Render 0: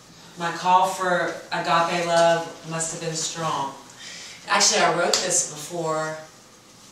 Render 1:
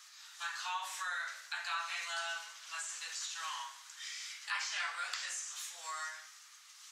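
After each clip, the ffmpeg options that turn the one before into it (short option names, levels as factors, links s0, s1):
-filter_complex "[0:a]acrossover=split=3200[s0][s1];[s1]acompressor=threshold=0.0251:ratio=4:attack=1:release=60[s2];[s0][s2]amix=inputs=2:normalize=0,highpass=f=1300:w=0.5412,highpass=f=1300:w=1.3066,acompressor=threshold=0.02:ratio=2,volume=0.531"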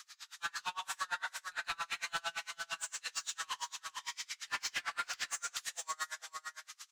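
-filter_complex "[0:a]asoftclip=type=tanh:threshold=0.015,asplit=2[s0][s1];[s1]aecho=0:1:432:0.531[s2];[s0][s2]amix=inputs=2:normalize=0,aeval=exprs='val(0)*pow(10,-32*(0.5-0.5*cos(2*PI*8.8*n/s))/20)':c=same,volume=2.51"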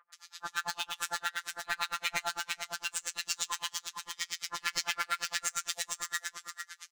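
-filter_complex "[0:a]asplit=2[s0][s1];[s1]acrusher=bits=5:mix=0:aa=0.000001,volume=0.422[s2];[s0][s2]amix=inputs=2:normalize=0,afftfilt=real='hypot(re,im)*cos(PI*b)':imag='0':win_size=1024:overlap=0.75,acrossover=split=1200[s3][s4];[s4]adelay=130[s5];[s3][s5]amix=inputs=2:normalize=0,volume=2"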